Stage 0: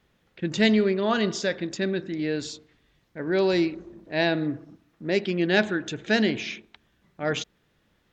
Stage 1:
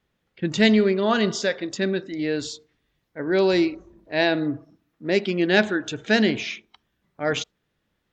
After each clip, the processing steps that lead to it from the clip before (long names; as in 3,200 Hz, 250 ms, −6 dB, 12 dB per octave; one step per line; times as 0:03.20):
noise reduction from a noise print of the clip's start 10 dB
level +3 dB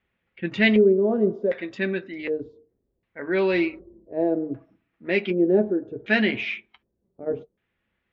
auto-filter low-pass square 0.66 Hz 460–2,400 Hz
notch comb filter 150 Hz
level −2.5 dB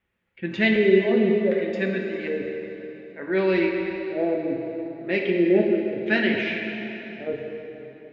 dense smooth reverb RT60 3.6 s, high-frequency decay 0.8×, DRR 1 dB
level −2 dB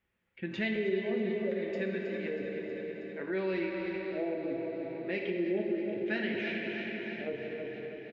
repeating echo 319 ms, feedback 58%, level −9.5 dB
downward compressor 2 to 1, threshold −32 dBFS, peak gain reduction 11.5 dB
level −4 dB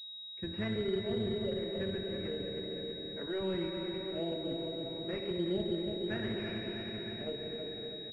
sub-octave generator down 1 octave, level −4 dB
switching amplifier with a slow clock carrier 3,800 Hz
level −3 dB